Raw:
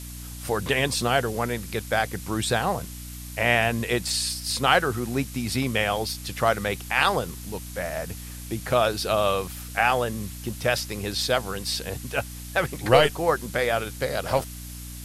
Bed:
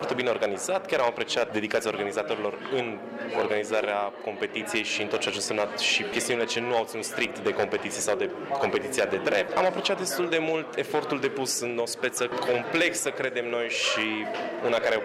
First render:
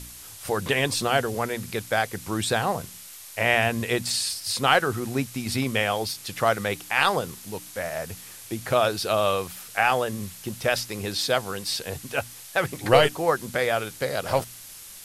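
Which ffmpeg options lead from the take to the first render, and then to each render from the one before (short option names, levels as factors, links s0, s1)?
-af "bandreject=f=60:t=h:w=4,bandreject=f=120:t=h:w=4,bandreject=f=180:t=h:w=4,bandreject=f=240:t=h:w=4,bandreject=f=300:t=h:w=4"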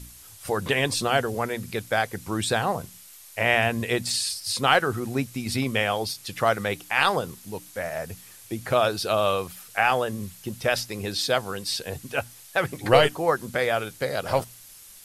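-af "afftdn=nr=6:nf=-43"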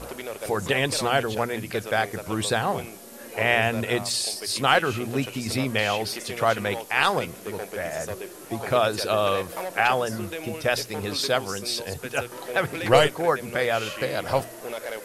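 -filter_complex "[1:a]volume=0.355[s0];[0:a][s0]amix=inputs=2:normalize=0"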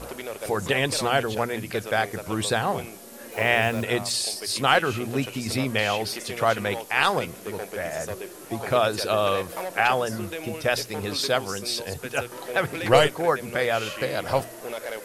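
-filter_complex "[0:a]asplit=3[s0][s1][s2];[s0]afade=t=out:st=3.31:d=0.02[s3];[s1]acrusher=bits=6:mix=0:aa=0.5,afade=t=in:st=3.31:d=0.02,afade=t=out:st=3.82:d=0.02[s4];[s2]afade=t=in:st=3.82:d=0.02[s5];[s3][s4][s5]amix=inputs=3:normalize=0"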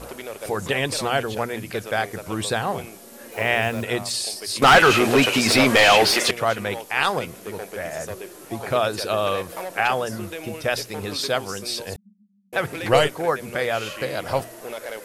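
-filter_complex "[0:a]asettb=1/sr,asplit=3[s0][s1][s2];[s0]atrim=end=4.624[s3];[s1]atrim=start=4.62:end=6.31,asetpts=PTS-STARTPTS,afade=t=in:d=0.004:c=qsin,afade=t=out:st=1.686:d=0.004:c=qsin,asplit=2[s4][s5];[s5]highpass=f=720:p=1,volume=20,asoftclip=type=tanh:threshold=0.631[s6];[s4][s6]amix=inputs=2:normalize=0,lowpass=f=3500:p=1,volume=0.501[s7];[s2]atrim=start=6.306[s8];[s3][s7]acrossfade=d=0.004:c1=hsin:c2=qsin[s9];[s9][s8]acrossfade=d=0.004:c1=qsin:c2=hsin,asettb=1/sr,asplit=3[s10][s11][s12];[s10]atrim=end=11.964[s13];[s11]atrim=start=11.96:end=12.53,asetpts=PTS-STARTPTS,afade=t=in:d=0.004:c=qsin,afade=t=out:st=0.566:d=0.004:c=qsin,asuperpass=centerf=200:order=8:qfactor=7[s14];[s12]atrim=start=12.526[s15];[s13][s14]acrossfade=d=0.004:c1=hsin:c2=qsin[s16];[s16][s15]acrossfade=d=0.004:c1=qsin:c2=hsin"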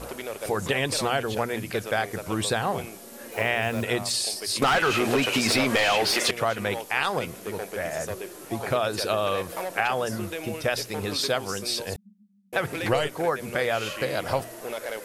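-af "acompressor=threshold=0.1:ratio=6"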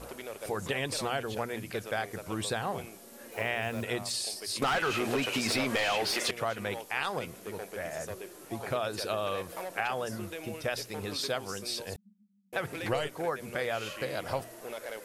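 -af "volume=0.447"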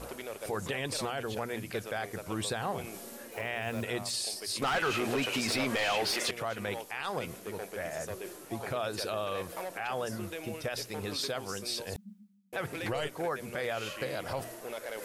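-af "alimiter=limit=0.0668:level=0:latency=1:release=17,areverse,acompressor=mode=upward:threshold=0.0158:ratio=2.5,areverse"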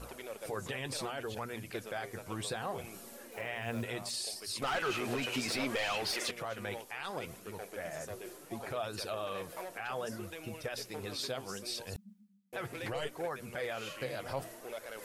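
-af "flanger=delay=0.7:depth=7.8:regen=49:speed=0.67:shape=sinusoidal"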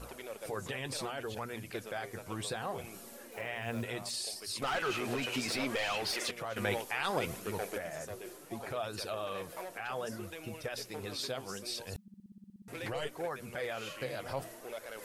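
-filter_complex "[0:a]asettb=1/sr,asplit=3[s0][s1][s2];[s0]atrim=end=6.564[s3];[s1]atrim=start=6.56:end=7.78,asetpts=PTS-STARTPTS,afade=t=in:d=0.004:c=qsin,afade=t=out:st=1.216:d=0.004:c=qsin,acontrast=81[s4];[s2]atrim=start=7.776[s5];[s3][s4]acrossfade=d=0.004:c1=hsin:c2=qsin[s6];[s6][s5]acrossfade=d=0.004:c1=qsin:c2=hsin,asplit=12[s7][s8][s9][s10][s11][s12][s13][s14][s15][s16][s17][s18];[s7]atrim=end=12.082[s19];[s8]atrim=start=12.018:end=12.082[s20];[s9]atrim=start=12.018:end=12.082[s21];[s10]atrim=start=12.018:end=12.082[s22];[s11]atrim=start=12.018:end=12.082[s23];[s12]atrim=start=12.018:end=12.082[s24];[s13]atrim=start=12.018:end=12.082[s25];[s14]atrim=start=12.018:end=12.082[s26];[s15]atrim=start=12.018:end=12.082[s27];[s16]atrim=start=12.018:end=12.082[s28];[s17]atrim=start=12.018:end=12.082[s29];[s18]atrim=start=12.678[s30];[s19][s20]acrossfade=d=0.004:c1=hsin:c2=hsin[s31];[s31][s21]acrossfade=d=0.004:c1=hsin:c2=hsin[s32];[s32][s22]acrossfade=d=0.004:c1=hsin:c2=hsin[s33];[s33][s23]acrossfade=d=0.004:c1=hsin:c2=hsin[s34];[s34][s24]acrossfade=d=0.004:c1=hsin:c2=hsin[s35];[s35][s25]acrossfade=d=0.004:c1=hsin:c2=hsin[s36];[s36][s26]acrossfade=d=0.004:c1=hsin:c2=hsin[s37];[s37][s27]acrossfade=d=0.004:c1=hsin:c2=hsin[s38];[s38][s28]acrossfade=d=0.004:c1=hsin:c2=hsin[s39];[s39][s29]acrossfade=d=0.004:c1=hsin:c2=hsin[s40];[s40][s30]acrossfade=d=0.004:c1=hsin:c2=hsin"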